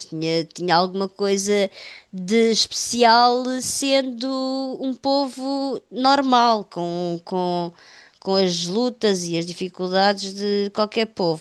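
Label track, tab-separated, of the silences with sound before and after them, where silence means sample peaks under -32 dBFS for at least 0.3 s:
7.790000	8.220000	silence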